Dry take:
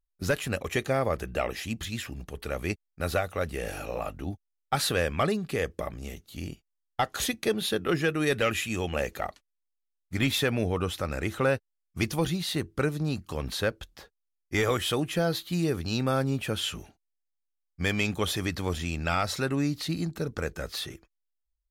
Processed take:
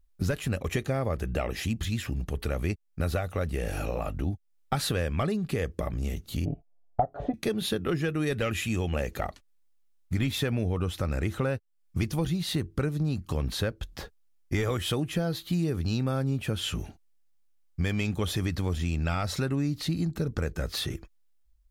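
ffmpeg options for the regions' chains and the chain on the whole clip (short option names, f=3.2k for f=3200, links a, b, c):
-filter_complex "[0:a]asettb=1/sr,asplit=3[a][b][c];[a]atrim=end=6.454[d];[b]atrim=start=6.45:end=7.34,asetpts=PTS-STARTPTS,afade=t=in:d=0.004:c=qsin,afade=t=out:st=0.886:d=0.004:c=qsin,lowpass=f=670:t=q:w=7.7,aecho=1:1:7:0.7,atrim=end_sample=39249[e];[c]atrim=start=7.336[f];[d][e]acrossfade=d=0.004:c1=hsin:c2=qsin[g];[g][f]acrossfade=d=0.004:c1=qsin:c2=hsin,lowshelf=f=250:g=10.5,acompressor=threshold=-38dB:ratio=3,volume=8dB"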